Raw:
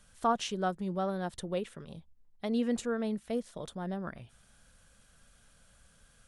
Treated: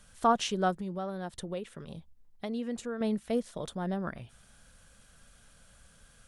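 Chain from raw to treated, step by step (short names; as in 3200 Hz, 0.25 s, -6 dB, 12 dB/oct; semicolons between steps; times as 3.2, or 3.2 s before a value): 0.74–3.01 compressor 2:1, threshold -42 dBFS, peak gain reduction 9 dB; gain +3.5 dB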